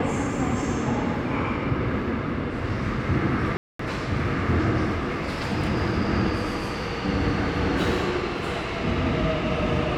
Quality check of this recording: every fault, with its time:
3.57–3.79 gap 0.224 s

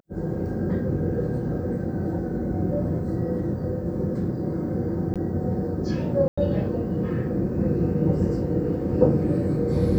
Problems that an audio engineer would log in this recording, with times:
5.14–5.16 gap 17 ms
6.28–6.38 gap 95 ms

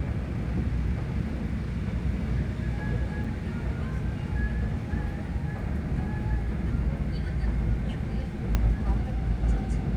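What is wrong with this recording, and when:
3.24–3.25 gap 5.6 ms
8.55 pop -11 dBFS

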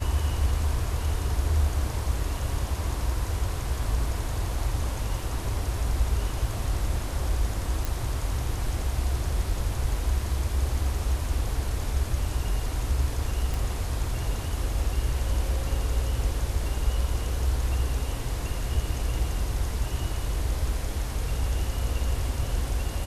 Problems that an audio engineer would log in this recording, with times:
7.85 pop
13.54 pop

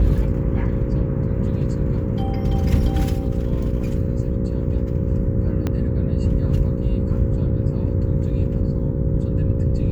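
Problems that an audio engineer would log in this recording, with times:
buzz 60 Hz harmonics 9 -25 dBFS
5.67 pop -11 dBFS

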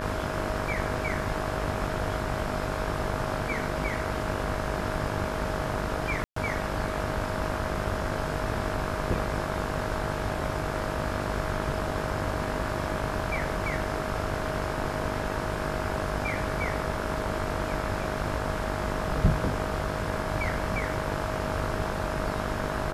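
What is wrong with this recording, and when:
buzz 50 Hz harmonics 34 -34 dBFS
tone 630 Hz -36 dBFS
6.24–6.36 gap 0.124 s

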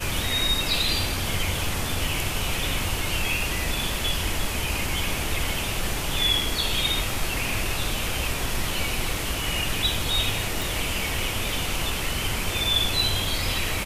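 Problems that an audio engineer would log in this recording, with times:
10.62 pop

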